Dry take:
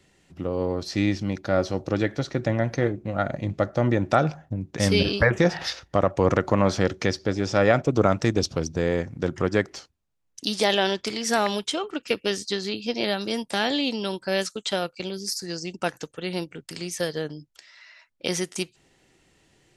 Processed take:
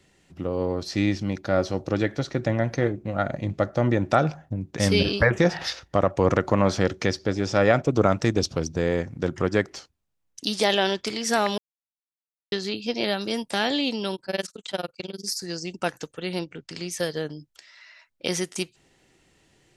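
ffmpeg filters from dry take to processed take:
-filter_complex "[0:a]asettb=1/sr,asplit=3[s0][s1][s2];[s0]atrim=end=14.154[s3];[s1]atrim=start=14.15:end=15.24,asetpts=PTS-STARTPTS,afade=t=in:d=0.004:c=qsin,afade=t=out:st=1.086:d=0.004:c=qsin,tremolo=f=20:d=0.974[s4];[s2]atrim=start=15.236[s5];[s3][s4]acrossfade=d=0.004:c1=hsin:c2=qsin[s6];[s6][s5]acrossfade=d=0.004:c1=qsin:c2=hsin,asettb=1/sr,asplit=3[s7][s8][s9];[s7]atrim=end=16.394[s10];[s8]atrim=start=16.39:end=16.9,asetpts=PTS-STARTPTS,afade=t=in:d=0.004:c=qsin,afade=t=out:st=0.506:d=0.004:c=qsin,lowpass=f=6900:w=0.5412,lowpass=f=6900:w=1.3066[s11];[s9]atrim=start=16.896[s12];[s10][s11]acrossfade=d=0.004:c1=hsin:c2=qsin[s13];[s13][s12]acrossfade=d=0.004:c1=qsin:c2=hsin,asplit=3[s14][s15][s16];[s14]atrim=end=11.58,asetpts=PTS-STARTPTS,afade=t=out:st=11.576:d=0.004:c=hsin[s17];[s15]atrim=start=11.58:end=12.52,asetpts=PTS-STARTPTS,volume=0[s18];[s16]atrim=start=12.52,asetpts=PTS-STARTPTS,afade=t=in:d=0.004:c=hsin[s19];[s17][s18][s19]concat=n=3:v=0:a=1"

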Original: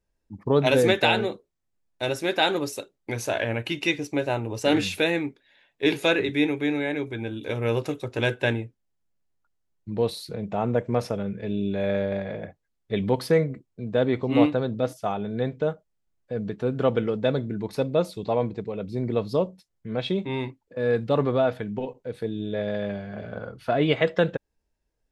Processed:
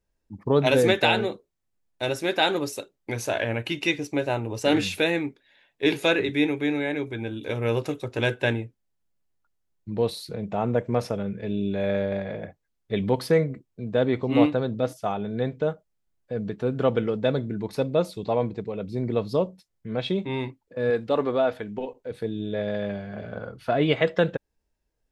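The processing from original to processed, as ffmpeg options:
-filter_complex "[0:a]asettb=1/sr,asplit=3[s0][s1][s2];[s0]atrim=end=20.904[s3];[s1]atrim=start=20.9:end=22.11,asetpts=PTS-STARTPTS,afade=t=in:d=0.004:c=qsin,afade=t=out:st=1.206:d=0.004:c=qsin,equalizer=f=140:t=o:w=0.77:g=-12.5[s4];[s2]atrim=start=22.106[s5];[s3][s4]acrossfade=d=0.004:c1=hsin:c2=qsin[s6];[s6][s5]acrossfade=d=0.004:c1=qsin:c2=hsin"

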